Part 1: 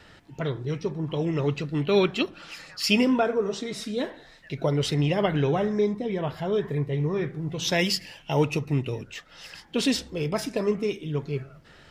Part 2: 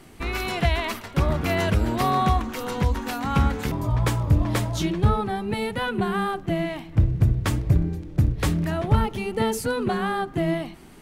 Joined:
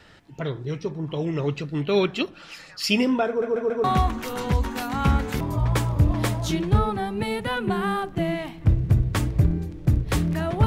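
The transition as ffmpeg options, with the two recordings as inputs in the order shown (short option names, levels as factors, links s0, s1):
-filter_complex "[0:a]apad=whole_dur=10.66,atrim=end=10.66,asplit=4[s0][s1][s2][s3];[s0]atrim=end=3.422[s4];[s1]atrim=start=3.278:end=3.422[s5];[s2]atrim=start=3.278:end=3.422[s6];[s3]atrim=start=3.278:end=3.422[s7];[1:a]atrim=start=2.148:end=8.97[s8];[s4][s5]acrossfade=d=0.004:c1=hsin:c2=hsin[s9];[s9][s6]acrossfade=d=0.004:c1=hsin:c2=hsin[s10];[s10][s7]acrossfade=d=0.004:c1=hsin:c2=hsin[s11];[s11][s8]acrossfade=d=0.004:c1=hsin:c2=hsin"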